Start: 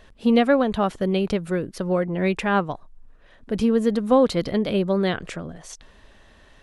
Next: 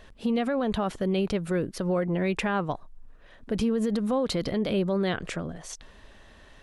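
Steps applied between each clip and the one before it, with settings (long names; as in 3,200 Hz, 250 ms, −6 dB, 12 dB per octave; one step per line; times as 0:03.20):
brickwall limiter −18.5 dBFS, peak gain reduction 11.5 dB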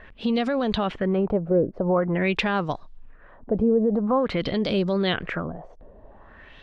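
auto-filter low-pass sine 0.47 Hz 570–5,400 Hz
level +2.5 dB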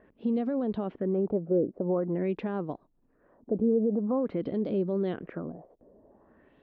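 resonant band-pass 310 Hz, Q 1.3
level −2 dB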